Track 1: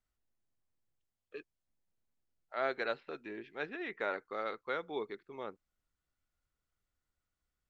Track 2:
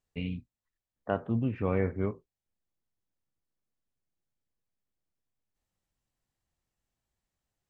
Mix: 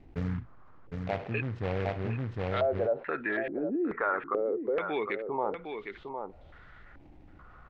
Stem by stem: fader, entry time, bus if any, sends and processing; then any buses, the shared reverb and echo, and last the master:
-2.0 dB, 0.00 s, no send, echo send -14 dB, compressor 1.5:1, threshold -45 dBFS, peak gain reduction 6.5 dB; sine folder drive 3 dB, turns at -24.5 dBFS; stepped low-pass 2.3 Hz 310–3500 Hz
-0.5 dB, 0.00 s, no send, echo send -9 dB, EQ curve 120 Hz 0 dB, 260 Hz -8 dB, 820 Hz +4 dB, 1400 Hz -19 dB; noise-modulated delay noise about 1300 Hz, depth 0.11 ms; auto duck -10 dB, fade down 0.85 s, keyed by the first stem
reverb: off
echo: echo 0.759 s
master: LPF 4900 Hz 12 dB/oct; fast leveller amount 50%

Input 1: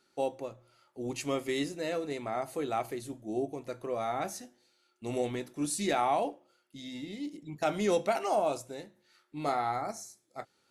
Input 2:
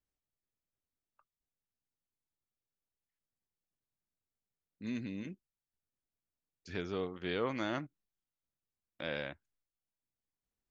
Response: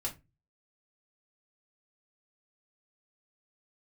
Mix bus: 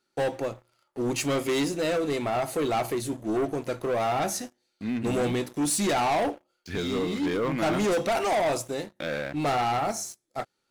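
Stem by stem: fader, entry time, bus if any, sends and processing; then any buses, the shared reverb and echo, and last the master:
0.0 dB, 0.00 s, no send, soft clip -27.5 dBFS, distortion -12 dB
-1.5 dB, 0.00 s, no send, treble ducked by the level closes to 2700 Hz, closed at -37.5 dBFS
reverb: off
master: sample leveller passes 3

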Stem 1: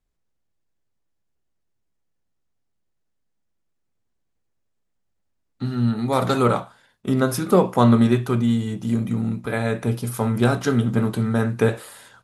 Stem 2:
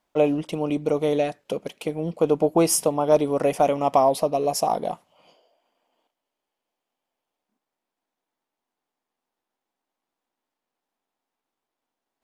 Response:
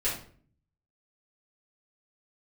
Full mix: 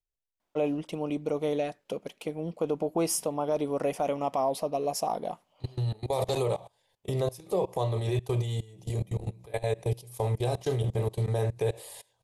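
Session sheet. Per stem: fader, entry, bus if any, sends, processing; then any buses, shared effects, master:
+2.0 dB, 0.00 s, no send, level quantiser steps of 23 dB; fixed phaser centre 580 Hz, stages 4
-6.5 dB, 0.40 s, no send, dry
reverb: off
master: limiter -18.5 dBFS, peak gain reduction 7 dB

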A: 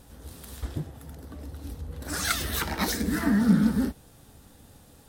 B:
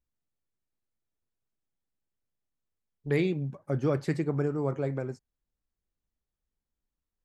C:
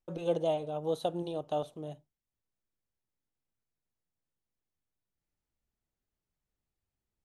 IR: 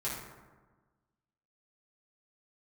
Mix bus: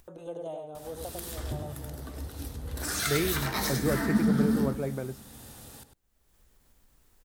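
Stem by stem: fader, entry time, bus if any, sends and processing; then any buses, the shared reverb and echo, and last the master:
+1.5 dB, 0.75 s, bus A, send -13 dB, echo send -11 dB, dry
-1.5 dB, 0.00 s, no bus, no send, no echo send, dry
-6.5 dB, 0.00 s, bus A, no send, echo send -6 dB, band shelf 3600 Hz -9 dB
bus A: 0.0 dB, tilt +1.5 dB/oct; compressor 3:1, threshold -34 dBFS, peak gain reduction 13 dB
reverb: on, RT60 1.3 s, pre-delay 4 ms
echo: echo 0.1 s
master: bell 180 Hz -5.5 dB 0.23 oct; upward compressor, threshold -41 dBFS

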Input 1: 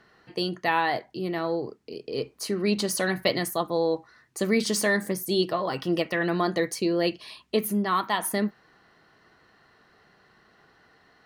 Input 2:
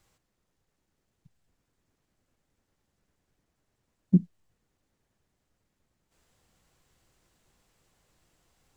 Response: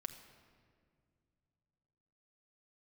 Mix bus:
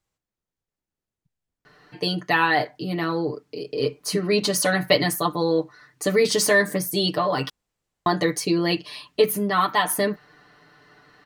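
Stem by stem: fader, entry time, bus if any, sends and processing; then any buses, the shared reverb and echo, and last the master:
+3.0 dB, 1.65 s, muted 7.5–8.06, no send, comb 6.8 ms, depth 88%
-11.5 dB, 0.00 s, no send, dry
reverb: off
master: dry

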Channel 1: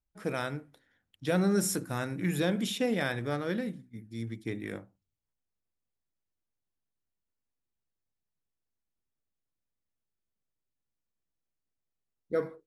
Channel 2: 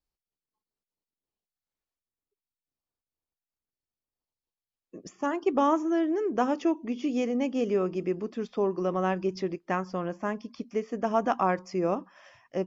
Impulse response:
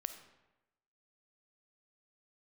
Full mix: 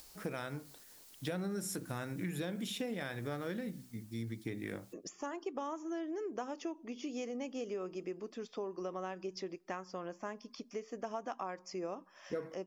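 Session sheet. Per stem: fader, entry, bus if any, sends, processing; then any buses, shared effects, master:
0.0 dB, 0.00 s, no send, dry
3.52 s -1.5 dB -> 4.04 s -8.5 dB, 0.00 s, send -23 dB, tone controls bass -8 dB, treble +8 dB; upward compressor, threshold -32 dBFS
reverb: on, RT60 1.0 s, pre-delay 10 ms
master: compressor 6:1, threshold -36 dBFS, peak gain reduction 13 dB

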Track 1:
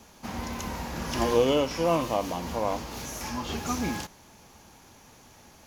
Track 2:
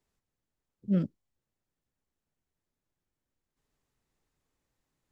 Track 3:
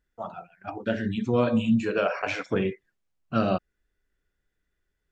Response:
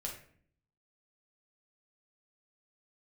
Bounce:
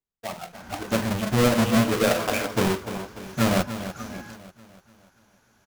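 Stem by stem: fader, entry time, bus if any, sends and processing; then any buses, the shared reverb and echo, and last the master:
-11.5 dB, 0.30 s, no send, no echo send, bell 1500 Hz +14 dB 0.26 oct
-14.0 dB, 0.00 s, no send, no echo send, dry
-2.0 dB, 0.05 s, send -16.5 dB, echo send -11 dB, half-waves squared off; expander -45 dBFS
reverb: on, RT60 0.55 s, pre-delay 6 ms
echo: feedback echo 0.295 s, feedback 50%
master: dry

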